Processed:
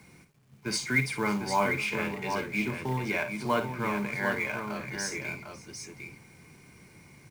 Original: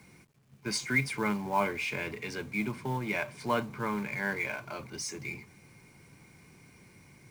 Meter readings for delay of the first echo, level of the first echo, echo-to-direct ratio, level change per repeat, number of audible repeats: 54 ms, −10.0 dB, −4.5 dB, repeats not evenly spaced, 3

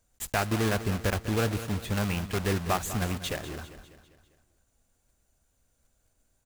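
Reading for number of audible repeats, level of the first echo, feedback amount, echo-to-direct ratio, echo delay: 4, −13.0 dB, 50%, −12.0 dB, 199 ms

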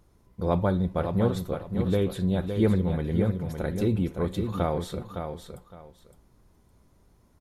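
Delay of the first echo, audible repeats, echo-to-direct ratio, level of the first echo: 562 ms, 2, −7.0 dB, −7.0 dB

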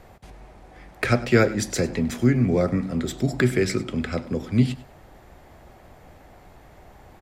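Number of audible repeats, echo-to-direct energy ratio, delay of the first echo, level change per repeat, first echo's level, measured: 2, −18.0 dB, 100 ms, −12.5 dB, −18.5 dB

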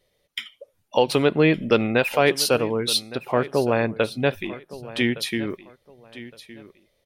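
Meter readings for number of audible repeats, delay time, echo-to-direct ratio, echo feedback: 2, 1,164 ms, −17.0 dB, 24%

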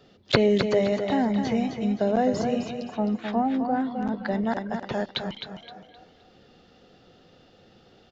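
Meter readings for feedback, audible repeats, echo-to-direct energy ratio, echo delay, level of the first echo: 32%, 3, −6.5 dB, 260 ms, −7.0 dB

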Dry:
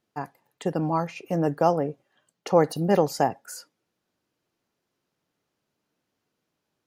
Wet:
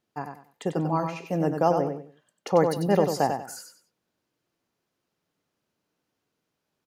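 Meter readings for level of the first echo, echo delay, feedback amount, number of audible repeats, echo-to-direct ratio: −6.5 dB, 95 ms, 26%, 3, −6.0 dB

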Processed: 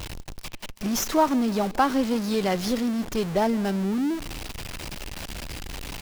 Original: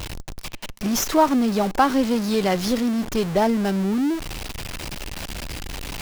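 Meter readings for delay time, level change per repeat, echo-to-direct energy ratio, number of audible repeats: 161 ms, −5.0 dB, −23.0 dB, 2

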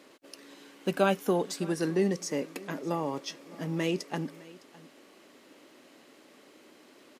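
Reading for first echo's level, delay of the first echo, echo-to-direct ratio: −21.0 dB, 609 ms, −21.0 dB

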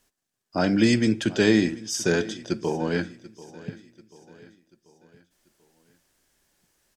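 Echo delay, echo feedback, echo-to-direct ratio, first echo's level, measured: 738 ms, 47%, −18.0 dB, −19.0 dB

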